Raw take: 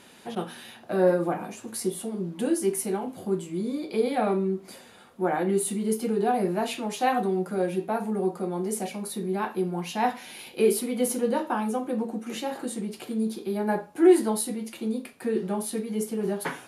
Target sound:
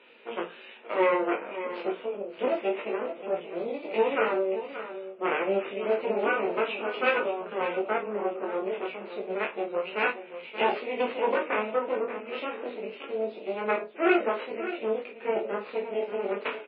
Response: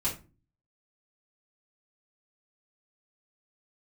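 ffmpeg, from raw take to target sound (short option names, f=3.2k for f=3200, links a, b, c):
-filter_complex "[0:a]bandreject=f=60:t=h:w=6,bandreject=f=120:t=h:w=6,bandreject=f=180:t=h:w=6,bandreject=f=240:t=h:w=6,bandreject=f=300:t=h:w=6,bandreject=f=360:t=h:w=6,bandreject=f=420:t=h:w=6,asplit=2[a][b];[b]acompressor=threshold=-34dB:ratio=4,volume=-3dB[c];[a][c]amix=inputs=2:normalize=0,aeval=exprs='0.447*(cos(1*acos(clip(val(0)/0.447,-1,1)))-cos(1*PI/2))+0.2*(cos(2*acos(clip(val(0)/0.447,-1,1)))-cos(2*PI/2))+0.00355*(cos(3*acos(clip(val(0)/0.447,-1,1)))-cos(3*PI/2))+0.2*(cos(6*acos(clip(val(0)/0.447,-1,1)))-cos(6*PI/2))+0.00631*(cos(8*acos(clip(val(0)/0.447,-1,1)))-cos(8*PI/2))':c=same,flanger=delay=17:depth=3.9:speed=0.28,asplit=3[d][e][f];[d]afade=t=out:st=9.25:d=0.02[g];[e]adynamicsmooth=sensitivity=8:basefreq=870,afade=t=in:st=9.25:d=0.02,afade=t=out:st=10.42:d=0.02[h];[f]afade=t=in:st=10.42:d=0.02[i];[g][h][i]amix=inputs=3:normalize=0,highpass=f=310:w=0.5412,highpass=f=310:w=1.3066,equalizer=f=310:t=q:w=4:g=-5,equalizer=f=480:t=q:w=4:g=4,equalizer=f=770:t=q:w=4:g=-9,equalizer=f=1.1k:t=q:w=4:g=-4,equalizer=f=1.7k:t=q:w=4:g=-7,equalizer=f=2.6k:t=q:w=4:g=7,lowpass=f=2.7k:w=0.5412,lowpass=f=2.7k:w=1.3066,asplit=2[j][k];[k]adelay=29,volume=-9dB[l];[j][l]amix=inputs=2:normalize=0,asplit=2[m][n];[n]aecho=0:1:577:0.266[o];[m][o]amix=inputs=2:normalize=0,volume=-1dB" -ar 12000 -c:a libmp3lame -b:a 16k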